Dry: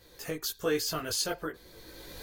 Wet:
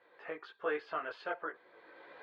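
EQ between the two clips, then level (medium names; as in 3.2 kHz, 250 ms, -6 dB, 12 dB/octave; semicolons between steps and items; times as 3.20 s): band-pass 750–2200 Hz; distance through air 460 m; +4.0 dB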